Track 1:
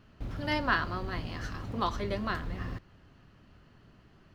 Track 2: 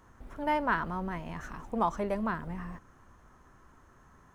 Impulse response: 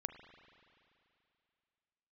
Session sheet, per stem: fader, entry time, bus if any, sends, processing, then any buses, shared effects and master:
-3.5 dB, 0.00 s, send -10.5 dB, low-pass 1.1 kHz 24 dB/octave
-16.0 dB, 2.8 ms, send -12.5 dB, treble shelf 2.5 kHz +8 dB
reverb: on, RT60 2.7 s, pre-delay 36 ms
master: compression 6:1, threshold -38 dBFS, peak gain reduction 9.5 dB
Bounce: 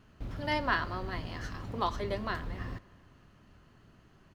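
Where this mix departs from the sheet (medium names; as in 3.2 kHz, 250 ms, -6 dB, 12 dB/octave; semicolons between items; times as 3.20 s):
stem 1: missing low-pass 1.1 kHz 24 dB/octave; master: missing compression 6:1, threshold -38 dBFS, peak gain reduction 9.5 dB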